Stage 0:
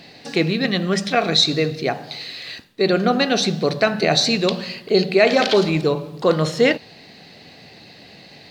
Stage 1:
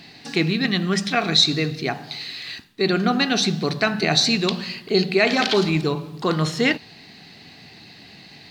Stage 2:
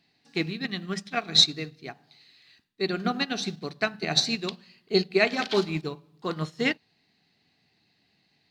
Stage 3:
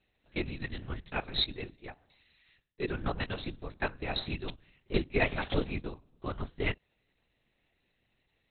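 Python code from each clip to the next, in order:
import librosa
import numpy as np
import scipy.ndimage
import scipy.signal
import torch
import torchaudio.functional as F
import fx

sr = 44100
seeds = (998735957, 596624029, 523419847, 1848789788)

y1 = fx.peak_eq(x, sr, hz=540.0, db=-12.0, octaves=0.52)
y2 = fx.upward_expand(y1, sr, threshold_db=-29.0, expansion=2.5)
y3 = fx.lpc_vocoder(y2, sr, seeds[0], excitation='whisper', order=8)
y3 = y3 * 10.0 ** (-5.5 / 20.0)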